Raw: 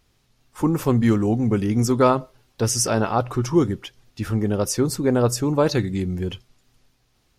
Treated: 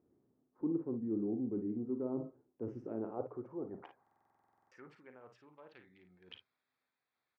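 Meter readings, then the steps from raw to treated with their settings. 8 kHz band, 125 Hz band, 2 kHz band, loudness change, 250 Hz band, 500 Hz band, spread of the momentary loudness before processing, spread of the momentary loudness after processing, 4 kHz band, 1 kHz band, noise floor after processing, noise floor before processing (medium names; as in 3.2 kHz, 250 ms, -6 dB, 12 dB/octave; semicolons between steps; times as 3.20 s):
under -40 dB, -28.5 dB, -29.5 dB, -18.5 dB, -18.0 dB, -20.5 dB, 8 LU, 22 LU, under -25 dB, -28.5 dB, under -85 dBFS, -65 dBFS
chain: local Wiener filter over 15 samples; high-pass 70 Hz; low-pass that closes with the level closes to 880 Hz, closed at -13.5 dBFS; high-order bell 5.8 kHz -10.5 dB; reverse; compression 6:1, threshold -33 dBFS, peak gain reduction 19 dB; reverse; band-pass sweep 320 Hz -> 3.5 kHz, 2.95–5.42 s; on a send: early reflections 39 ms -12 dB, 54 ms -9 dB; on the sum: buffer glitch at 4.02 s, samples 2048, times 14; trim +2 dB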